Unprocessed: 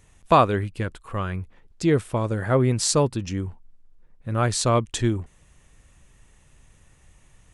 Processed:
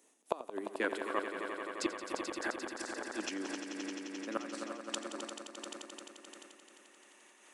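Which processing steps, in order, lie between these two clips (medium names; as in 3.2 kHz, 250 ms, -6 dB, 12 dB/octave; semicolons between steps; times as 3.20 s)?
steep high-pass 250 Hz 48 dB/octave; peaking EQ 1.9 kHz -9.5 dB 2.5 oct, from 0.80 s +4 dB; inverted gate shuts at -16 dBFS, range -27 dB; echo with a slow build-up 87 ms, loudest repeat 5, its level -9 dB; random flutter of the level, depth 60%; trim -1 dB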